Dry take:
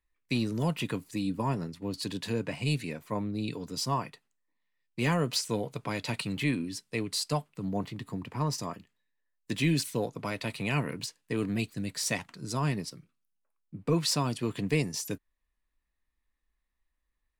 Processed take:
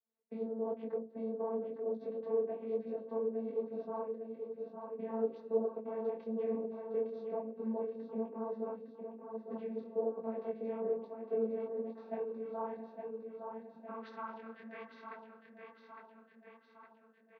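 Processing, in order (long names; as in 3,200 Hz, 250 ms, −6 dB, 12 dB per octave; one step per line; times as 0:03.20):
gain on one half-wave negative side −7 dB
parametric band 3,400 Hz −10.5 dB 2.6 octaves
mains-hum notches 60/120/180/240/300/360/420/480/540 Hz
dynamic equaliser 240 Hz, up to −8 dB, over −46 dBFS, Q 0.77
brickwall limiter −29 dBFS, peak gain reduction 7 dB
linear-phase brick-wall low-pass 4,700 Hz
channel vocoder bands 16, saw 224 Hz
band-pass filter sweep 500 Hz → 2,100 Hz, 0:11.56–0:15.31
repeating echo 859 ms, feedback 57%, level −6 dB
micro pitch shift up and down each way 37 cents
level +17 dB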